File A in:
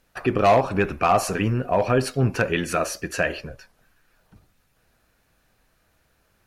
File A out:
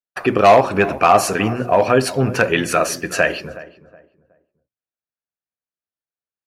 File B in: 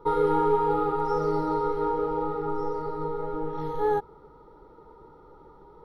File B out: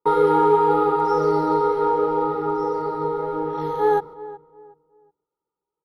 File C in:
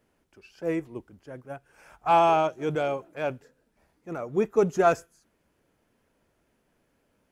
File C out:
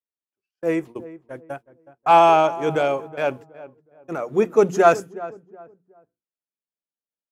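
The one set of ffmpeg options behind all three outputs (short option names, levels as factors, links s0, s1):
-filter_complex "[0:a]highpass=f=190:p=1,bandreject=f=60:t=h:w=6,bandreject=f=120:t=h:w=6,bandreject=f=180:t=h:w=6,bandreject=f=240:t=h:w=6,bandreject=f=300:t=h:w=6,bandreject=f=360:t=h:w=6,agate=range=0.00794:threshold=0.00794:ratio=16:detection=peak,asplit=2[s0][s1];[s1]adelay=369,lowpass=f=1200:p=1,volume=0.158,asplit=2[s2][s3];[s3]adelay=369,lowpass=f=1200:p=1,volume=0.31,asplit=2[s4][s5];[s5]adelay=369,lowpass=f=1200:p=1,volume=0.31[s6];[s2][s4][s6]amix=inputs=3:normalize=0[s7];[s0][s7]amix=inputs=2:normalize=0,volume=2.24"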